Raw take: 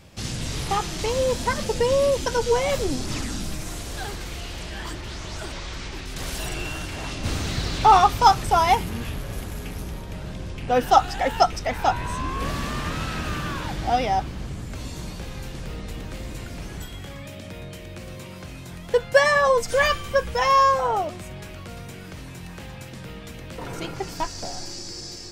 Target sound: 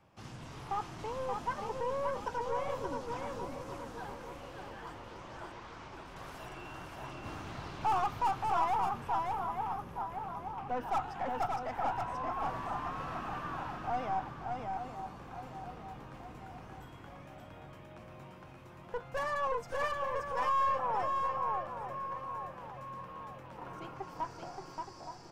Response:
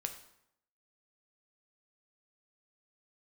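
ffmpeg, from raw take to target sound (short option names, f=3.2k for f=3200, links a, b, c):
-filter_complex "[0:a]acrossover=split=300 4800:gain=0.158 1 0.2[a][b][c];[a][b][c]amix=inputs=3:normalize=0,asplit=2[d][e];[e]adelay=871,lowpass=f=2.5k:p=1,volume=-10.5dB,asplit=2[f][g];[g]adelay=871,lowpass=f=2.5k:p=1,volume=0.52,asplit=2[h][i];[i]adelay=871,lowpass=f=2.5k:p=1,volume=0.52,asplit=2[j][k];[k]adelay=871,lowpass=f=2.5k:p=1,volume=0.52,asplit=2[l][m];[m]adelay=871,lowpass=f=2.5k:p=1,volume=0.52,asplit=2[n][o];[o]adelay=871,lowpass=f=2.5k:p=1,volume=0.52[p];[f][h][j][l][n][p]amix=inputs=6:normalize=0[q];[d][q]amix=inputs=2:normalize=0,aeval=exprs='(tanh(10*val(0)+0.35)-tanh(0.35))/10':c=same,equalizer=f=125:t=o:w=1:g=9,equalizer=f=500:t=o:w=1:g=-6,equalizer=f=1k:t=o:w=1:g=5,equalizer=f=2k:t=o:w=1:g=-6,equalizer=f=4k:t=o:w=1:g=-11,equalizer=f=8k:t=o:w=1:g=-4,asplit=2[r][s];[s]aecho=0:1:577:0.631[t];[r][t]amix=inputs=2:normalize=0,volume=-8dB"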